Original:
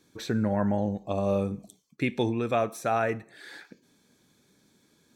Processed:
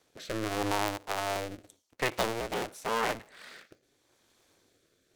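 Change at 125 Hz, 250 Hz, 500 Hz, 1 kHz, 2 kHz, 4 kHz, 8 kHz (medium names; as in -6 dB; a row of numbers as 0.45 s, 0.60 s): -11.0 dB, -10.0 dB, -5.5 dB, -1.0 dB, +1.5 dB, +5.5 dB, +5.5 dB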